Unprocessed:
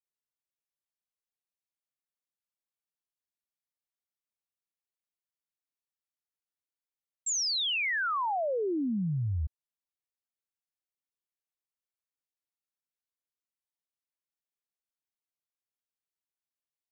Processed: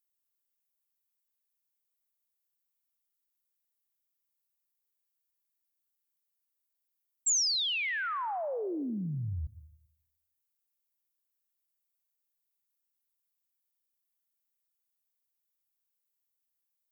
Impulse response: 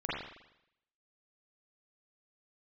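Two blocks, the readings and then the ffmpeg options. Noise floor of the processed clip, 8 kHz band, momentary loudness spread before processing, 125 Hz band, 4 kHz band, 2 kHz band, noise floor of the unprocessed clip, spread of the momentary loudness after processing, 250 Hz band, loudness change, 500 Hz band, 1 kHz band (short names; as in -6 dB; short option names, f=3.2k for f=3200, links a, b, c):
-83 dBFS, n/a, 8 LU, -4.5 dB, 0.0 dB, -3.0 dB, under -85 dBFS, 11 LU, -4.0 dB, -1.0 dB, -4.0 dB, -4.0 dB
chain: -filter_complex "[0:a]aemphasis=mode=production:type=50fm,asplit=2[a][b];[1:a]atrim=start_sample=2205,adelay=95[c];[b][c]afir=irnorm=-1:irlink=0,volume=-22.5dB[d];[a][d]amix=inputs=2:normalize=0,volume=-4dB"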